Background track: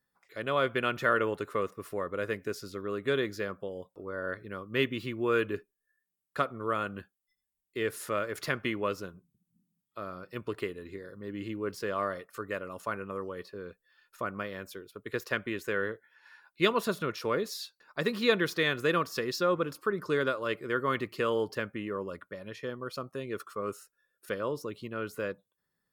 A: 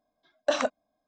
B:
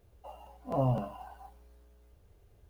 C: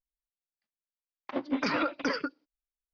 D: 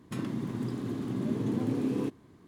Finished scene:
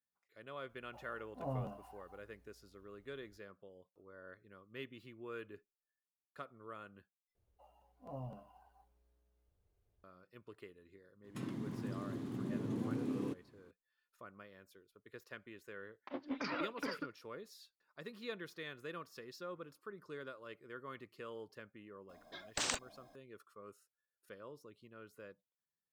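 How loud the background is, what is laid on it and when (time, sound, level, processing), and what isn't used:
background track −19 dB
0:00.69: mix in B −11.5 dB
0:07.35: overwrite with B −17.5 dB
0:11.24: mix in D −8.5 dB
0:14.78: mix in C −11 dB
0:22.09: mix in A −5 dB + every bin compressed towards the loudest bin 10 to 1

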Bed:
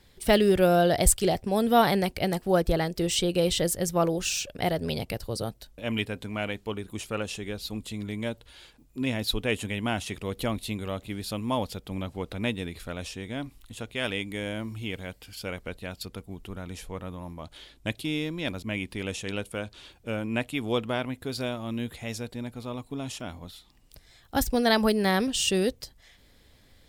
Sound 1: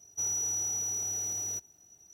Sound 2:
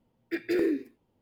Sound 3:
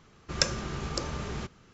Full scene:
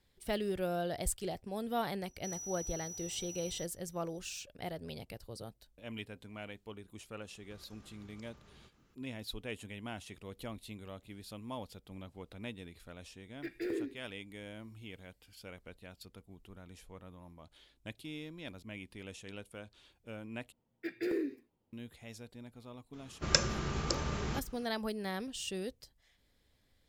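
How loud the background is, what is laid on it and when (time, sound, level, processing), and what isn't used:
bed −14.5 dB
0:02.06: mix in 1 −13 dB
0:07.22: mix in 3 −13 dB + downward compressor, threshold −44 dBFS
0:13.11: mix in 2 −10.5 dB
0:20.52: overwrite with 2 −8 dB
0:22.93: mix in 3 −1 dB

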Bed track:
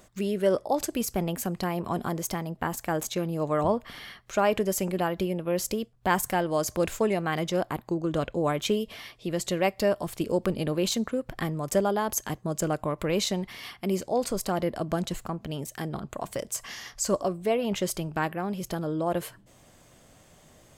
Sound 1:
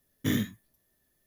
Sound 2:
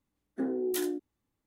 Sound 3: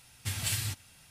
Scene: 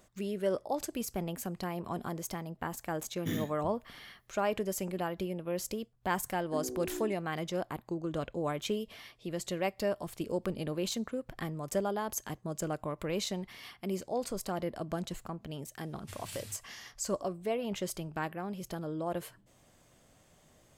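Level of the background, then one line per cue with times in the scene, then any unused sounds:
bed track −7.5 dB
0:03.01: mix in 1 −8 dB
0:06.14: mix in 2 −8 dB
0:15.82: mix in 3 −14 dB

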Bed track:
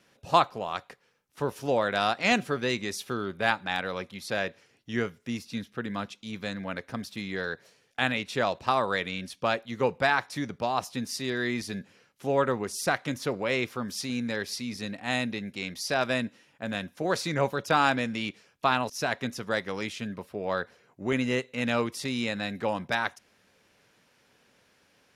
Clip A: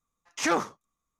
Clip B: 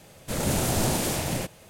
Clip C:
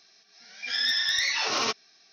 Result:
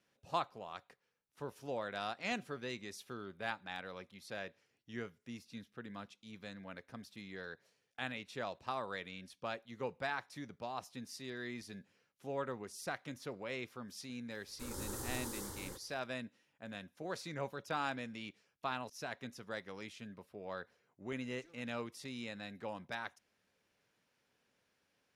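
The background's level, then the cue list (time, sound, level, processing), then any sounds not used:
bed track −14.5 dB
0:14.31: mix in B −14.5 dB + phaser with its sweep stopped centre 670 Hz, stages 6
0:20.98: mix in A −16 dB + guitar amp tone stack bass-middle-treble 10-0-1
not used: C

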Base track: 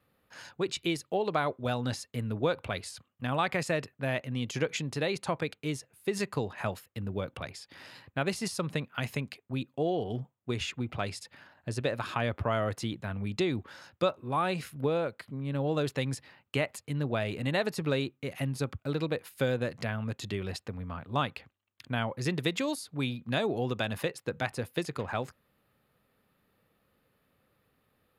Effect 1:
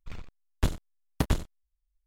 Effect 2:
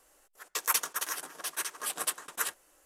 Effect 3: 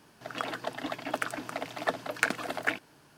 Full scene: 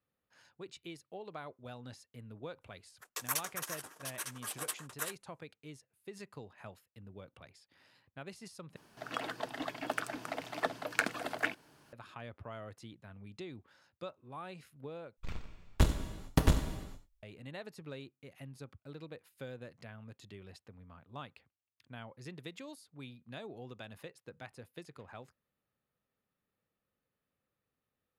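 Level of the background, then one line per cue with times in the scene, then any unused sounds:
base track −16.5 dB
0:02.61: mix in 2 −7 dB + noise gate −52 dBFS, range −18 dB
0:08.76: overwrite with 3 −4 dB
0:15.17: overwrite with 1 −0.5 dB + reverb whose tail is shaped and stops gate 480 ms falling, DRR 6.5 dB

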